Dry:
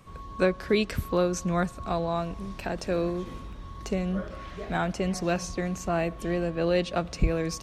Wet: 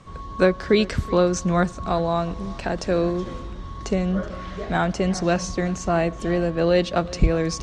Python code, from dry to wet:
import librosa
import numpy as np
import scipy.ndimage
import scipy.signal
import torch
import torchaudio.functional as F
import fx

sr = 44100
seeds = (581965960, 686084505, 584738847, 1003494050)

p1 = scipy.signal.sosfilt(scipy.signal.butter(4, 8000.0, 'lowpass', fs=sr, output='sos'), x)
p2 = fx.peak_eq(p1, sr, hz=2500.0, db=-4.5, octaves=0.27)
p3 = p2 + fx.echo_single(p2, sr, ms=373, db=-20.0, dry=0)
y = p3 * librosa.db_to_amplitude(6.0)